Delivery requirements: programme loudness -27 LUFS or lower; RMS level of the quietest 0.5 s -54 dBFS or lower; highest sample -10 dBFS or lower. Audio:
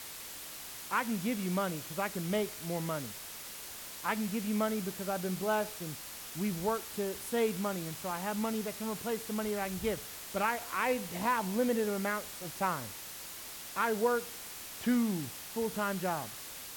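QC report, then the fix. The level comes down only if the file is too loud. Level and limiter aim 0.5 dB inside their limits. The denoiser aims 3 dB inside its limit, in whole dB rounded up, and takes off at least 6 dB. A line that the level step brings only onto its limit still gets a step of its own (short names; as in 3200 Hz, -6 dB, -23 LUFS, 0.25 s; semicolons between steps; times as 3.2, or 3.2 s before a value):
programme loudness -34.5 LUFS: OK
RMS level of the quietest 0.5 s -45 dBFS: fail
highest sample -17.5 dBFS: OK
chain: denoiser 12 dB, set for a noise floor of -45 dBFS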